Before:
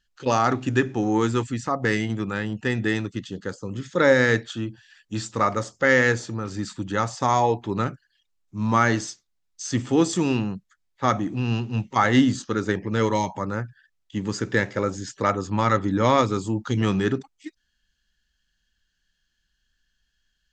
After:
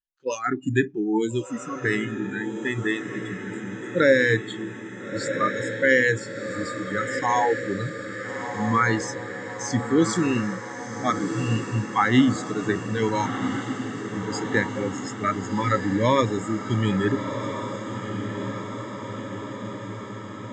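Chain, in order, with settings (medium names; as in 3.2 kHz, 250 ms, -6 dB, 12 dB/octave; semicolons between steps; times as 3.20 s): spectral noise reduction 27 dB; on a send: echo that smears into a reverb 1362 ms, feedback 69%, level -8.5 dB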